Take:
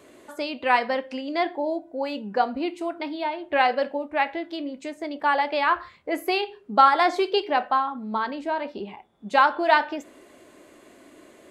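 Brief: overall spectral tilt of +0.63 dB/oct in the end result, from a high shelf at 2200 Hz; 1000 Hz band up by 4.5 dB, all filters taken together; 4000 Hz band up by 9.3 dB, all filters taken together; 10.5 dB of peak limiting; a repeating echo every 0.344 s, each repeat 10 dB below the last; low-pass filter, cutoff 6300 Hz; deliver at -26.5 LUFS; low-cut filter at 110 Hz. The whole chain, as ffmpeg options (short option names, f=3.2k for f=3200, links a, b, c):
-af "highpass=110,lowpass=6.3k,equalizer=f=1k:t=o:g=4,highshelf=f=2.2k:g=6.5,equalizer=f=4k:t=o:g=6.5,alimiter=limit=-10.5dB:level=0:latency=1,aecho=1:1:344|688|1032|1376:0.316|0.101|0.0324|0.0104,volume=-3dB"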